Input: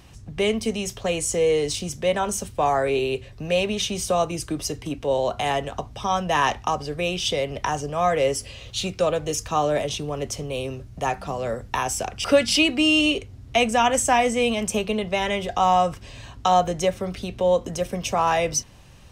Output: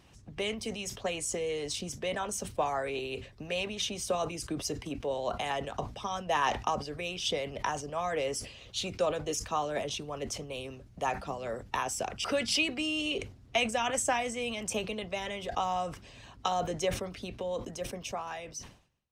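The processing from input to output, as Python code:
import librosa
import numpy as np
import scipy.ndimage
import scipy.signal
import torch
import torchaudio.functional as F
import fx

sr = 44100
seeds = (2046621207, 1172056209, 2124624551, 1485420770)

y = fx.fade_out_tail(x, sr, length_s=1.98)
y = fx.high_shelf(y, sr, hz=9400.0, db=-6.0)
y = fx.hpss(y, sr, part='harmonic', gain_db=-9)
y = fx.low_shelf(y, sr, hz=64.0, db=-7.0)
y = fx.sustainer(y, sr, db_per_s=120.0)
y = y * librosa.db_to_amplitude(-5.0)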